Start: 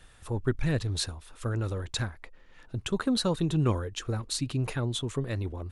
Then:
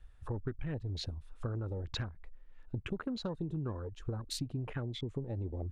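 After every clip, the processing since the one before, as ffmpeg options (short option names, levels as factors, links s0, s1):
-af "afwtdn=0.0112,highshelf=f=3700:g=-10,acompressor=threshold=0.0141:ratio=10,volume=1.41"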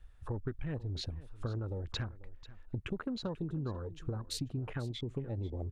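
-af "aecho=1:1:491:0.126"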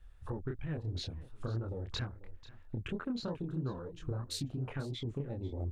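-af "flanger=delay=22.5:depth=7:speed=3,volume=1.41"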